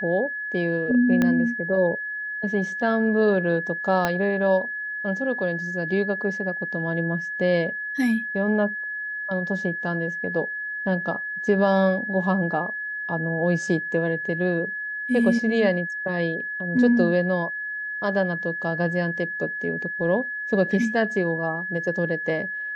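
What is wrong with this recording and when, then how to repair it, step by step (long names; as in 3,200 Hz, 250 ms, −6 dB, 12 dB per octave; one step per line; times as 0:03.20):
whistle 1,700 Hz −28 dBFS
0:01.22: click −10 dBFS
0:04.05: click −8 dBFS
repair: click removal
notch filter 1,700 Hz, Q 30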